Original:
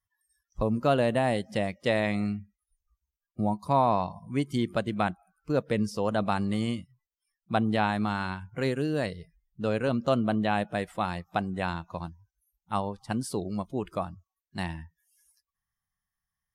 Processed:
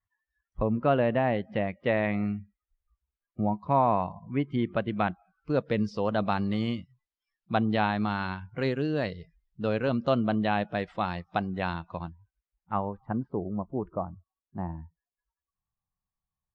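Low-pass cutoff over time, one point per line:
low-pass 24 dB/octave
4.51 s 2.7 kHz
5.64 s 4.7 kHz
11.65 s 4.7 kHz
12.81 s 2 kHz
13.34 s 1.1 kHz

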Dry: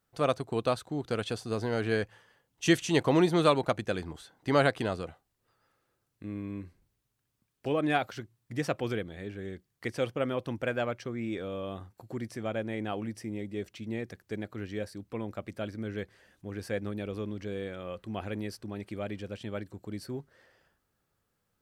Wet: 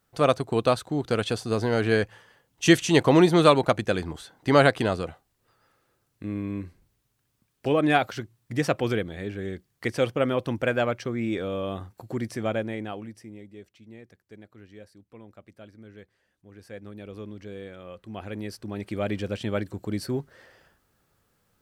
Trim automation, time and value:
12.51 s +6.5 dB
13.09 s -4 dB
13.75 s -11 dB
16.48 s -11 dB
17.20 s -3 dB
17.99 s -3 dB
19.14 s +9 dB

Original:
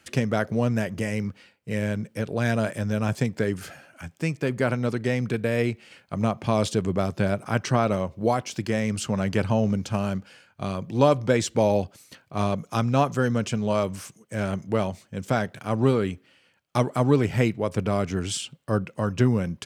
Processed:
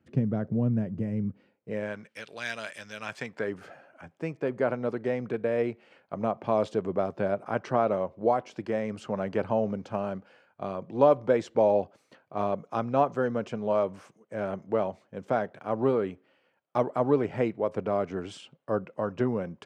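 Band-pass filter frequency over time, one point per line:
band-pass filter, Q 0.87
1.25 s 170 Hz
1.75 s 580 Hz
2.22 s 3.2 kHz
2.95 s 3.2 kHz
3.61 s 620 Hz

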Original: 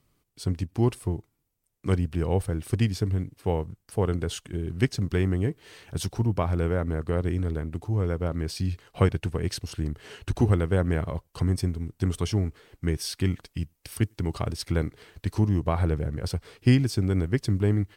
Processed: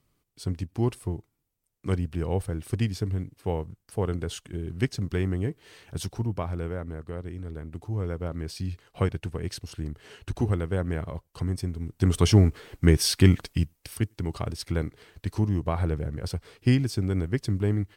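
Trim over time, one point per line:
6.00 s -2.5 dB
7.34 s -10.5 dB
7.84 s -4 dB
11.67 s -4 dB
12.29 s +8 dB
13.49 s +8 dB
13.99 s -2 dB

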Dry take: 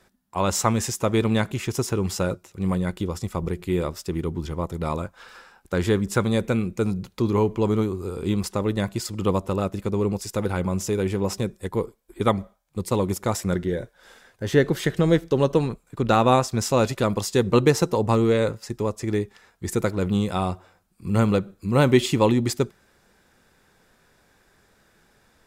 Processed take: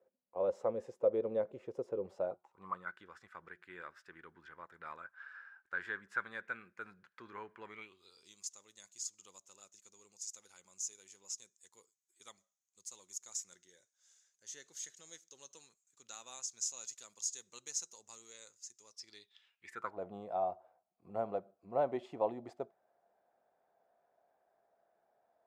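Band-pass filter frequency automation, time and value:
band-pass filter, Q 8.5
2.05 s 520 Hz
2.99 s 1.6 kHz
7.61 s 1.6 kHz
8.35 s 6.6 kHz
18.81 s 6.6 kHz
19.66 s 2.4 kHz
19.98 s 680 Hz

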